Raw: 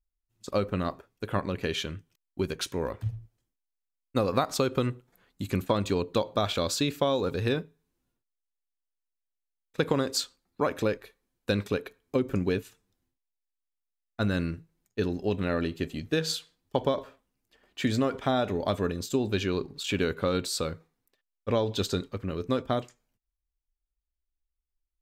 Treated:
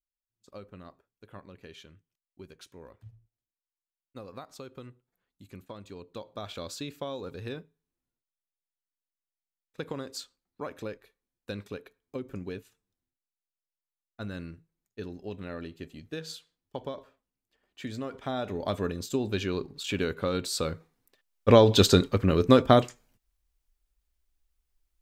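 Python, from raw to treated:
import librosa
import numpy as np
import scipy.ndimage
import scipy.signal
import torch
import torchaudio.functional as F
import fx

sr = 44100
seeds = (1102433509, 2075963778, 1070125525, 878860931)

y = fx.gain(x, sr, db=fx.line((5.88, -18.0), (6.57, -10.5), (17.96, -10.5), (18.75, -2.0), (20.37, -2.0), (21.51, 9.5)))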